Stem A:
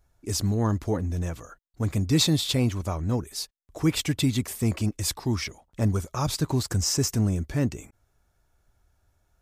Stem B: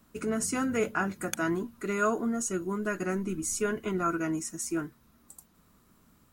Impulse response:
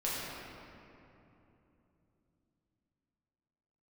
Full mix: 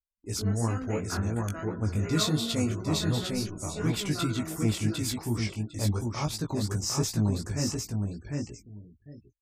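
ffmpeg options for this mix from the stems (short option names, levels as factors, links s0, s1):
-filter_complex "[0:a]volume=0.794,asplit=2[s0][s1];[s1]volume=0.668[s2];[1:a]adelay=150,volume=0.473,asplit=3[s3][s4][s5];[s4]volume=0.2[s6];[s5]volume=0.126[s7];[2:a]atrim=start_sample=2205[s8];[s6][s8]afir=irnorm=-1:irlink=0[s9];[s2][s7]amix=inputs=2:normalize=0,aecho=0:1:753|1506|2259:1|0.19|0.0361[s10];[s0][s3][s9][s10]amix=inputs=4:normalize=0,afftfilt=real='re*gte(hypot(re,im),0.00501)':imag='im*gte(hypot(re,im),0.00501)':win_size=1024:overlap=0.75,agate=range=0.0708:threshold=0.00251:ratio=16:detection=peak,flanger=delay=17:depth=3.2:speed=2.8"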